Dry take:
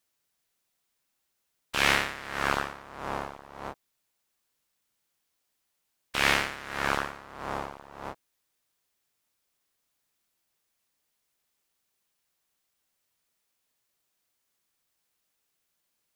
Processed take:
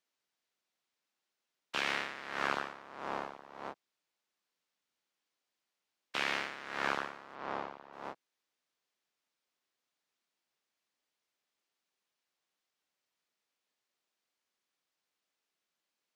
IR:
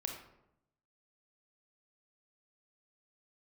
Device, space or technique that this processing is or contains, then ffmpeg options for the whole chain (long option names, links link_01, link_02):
DJ mixer with the lows and highs turned down: -filter_complex "[0:a]acrossover=split=170 6500:gain=0.141 1 0.2[link_01][link_02][link_03];[link_01][link_02][link_03]amix=inputs=3:normalize=0,alimiter=limit=-13.5dB:level=0:latency=1:release=277,asettb=1/sr,asplit=3[link_04][link_05][link_06];[link_04]atrim=end=7.354[link_07];[link_05]atrim=start=7.35:end=7.93,asetpts=PTS-STARTPTS,afade=type=in:duration=0.004:curve=qsin,afade=type=out:start_time=0.576:duration=0.004:curve=qsin,lowpass=5100[link_08];[link_06]atrim=start=7.926[link_09];[link_07][link_08]acrossfade=duration=0.004:curve1=hsin:curve2=qsin[link_10];[link_10][link_09]acrossfade=duration=0.004:curve1=qsin:curve2=hsin,volume=-4.5dB"